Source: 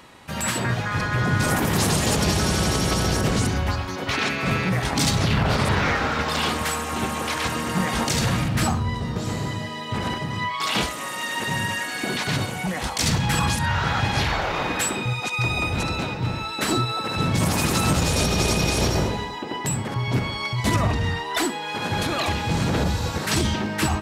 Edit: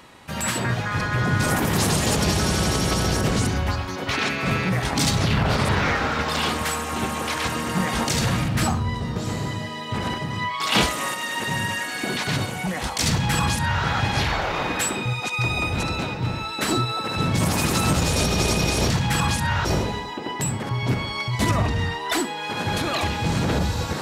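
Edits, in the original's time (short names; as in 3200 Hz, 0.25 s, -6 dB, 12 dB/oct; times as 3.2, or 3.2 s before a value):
10.72–11.14 gain +4.5 dB
13.09–13.84 copy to 18.9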